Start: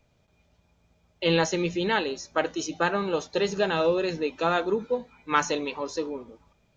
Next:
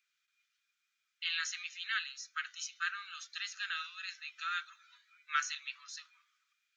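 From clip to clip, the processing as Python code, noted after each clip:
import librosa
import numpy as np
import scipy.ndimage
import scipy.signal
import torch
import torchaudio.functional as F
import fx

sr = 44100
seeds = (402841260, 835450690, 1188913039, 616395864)

y = scipy.signal.sosfilt(scipy.signal.butter(12, 1300.0, 'highpass', fs=sr, output='sos'), x)
y = y * librosa.db_to_amplitude(-6.0)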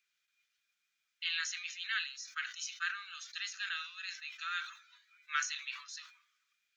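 y = fx.peak_eq(x, sr, hz=1300.0, db=-4.0, octaves=0.23)
y = fx.sustainer(y, sr, db_per_s=110.0)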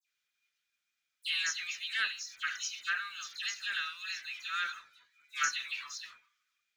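y = fx.leveller(x, sr, passes=1)
y = fx.dispersion(y, sr, late='lows', ms=86.0, hz=2700.0)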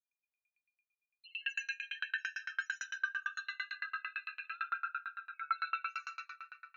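y = fx.spec_topn(x, sr, count=2)
y = fx.rev_freeverb(y, sr, rt60_s=3.6, hf_ratio=0.5, predelay_ms=45, drr_db=-8.5)
y = fx.tremolo_decay(y, sr, direction='decaying', hz=8.9, depth_db=35)
y = y * librosa.db_to_amplitude(4.0)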